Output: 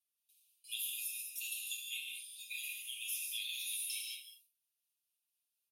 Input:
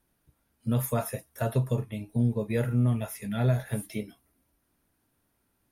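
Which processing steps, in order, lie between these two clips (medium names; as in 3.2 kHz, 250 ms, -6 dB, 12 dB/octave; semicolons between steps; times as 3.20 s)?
gate with hold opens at -55 dBFS; steep high-pass 2.5 kHz 96 dB/octave; comb 7.3 ms, depth 84%; compression 6:1, threshold -46 dBFS, peak gain reduction 16.5 dB; tremolo 4.1 Hz, depth 42%; reverberation, pre-delay 3 ms, DRR -0.5 dB; trim +8.5 dB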